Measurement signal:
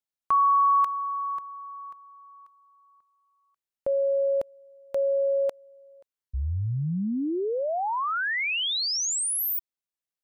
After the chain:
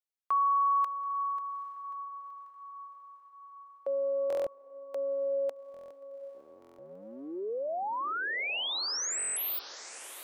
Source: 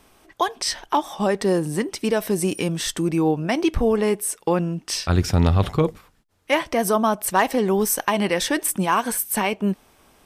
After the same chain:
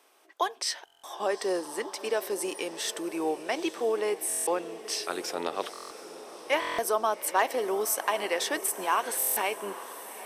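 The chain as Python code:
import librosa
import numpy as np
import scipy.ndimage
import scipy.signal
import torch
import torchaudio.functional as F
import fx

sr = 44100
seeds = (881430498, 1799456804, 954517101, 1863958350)

y = fx.octave_divider(x, sr, octaves=1, level_db=-6.0)
y = scipy.signal.sosfilt(scipy.signal.butter(4, 370.0, 'highpass', fs=sr, output='sos'), y)
y = fx.echo_diffused(y, sr, ms=840, feedback_pct=59, wet_db=-14.0)
y = fx.buffer_glitch(y, sr, at_s=(0.85, 4.28, 5.72, 6.6, 9.18), block=1024, repeats=7)
y = F.gain(torch.from_numpy(y), -6.0).numpy()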